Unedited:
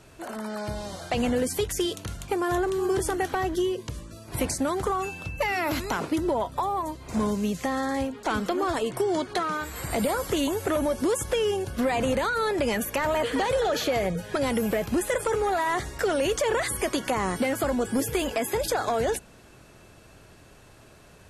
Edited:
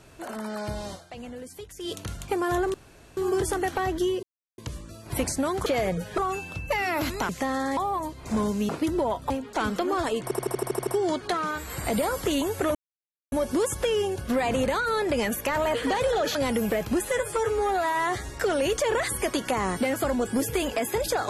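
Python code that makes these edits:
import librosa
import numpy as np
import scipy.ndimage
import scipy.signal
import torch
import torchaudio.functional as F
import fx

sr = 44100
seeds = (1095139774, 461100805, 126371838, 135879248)

y = fx.edit(x, sr, fx.fade_down_up(start_s=0.92, length_s=1.0, db=-14.5, fade_s=0.15, curve='qua'),
    fx.insert_room_tone(at_s=2.74, length_s=0.43),
    fx.insert_silence(at_s=3.8, length_s=0.35),
    fx.swap(start_s=5.99, length_s=0.61, other_s=7.52, other_length_s=0.48),
    fx.stutter(start_s=8.93, slice_s=0.08, count=9),
    fx.insert_silence(at_s=10.81, length_s=0.57),
    fx.move(start_s=13.84, length_s=0.52, to_s=4.88),
    fx.stretch_span(start_s=15.06, length_s=0.83, factor=1.5), tone=tone)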